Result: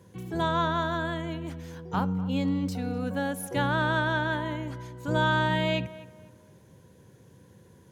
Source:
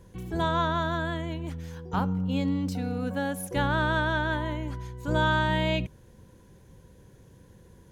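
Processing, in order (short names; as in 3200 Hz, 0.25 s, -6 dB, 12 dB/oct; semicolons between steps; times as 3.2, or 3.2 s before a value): HPF 89 Hz 24 dB/oct; on a send: tape echo 0.249 s, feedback 37%, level -16 dB, low-pass 1900 Hz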